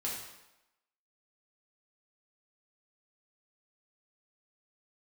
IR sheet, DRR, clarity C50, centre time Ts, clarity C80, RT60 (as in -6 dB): -5.5 dB, 2.5 dB, 53 ms, 5.0 dB, 0.95 s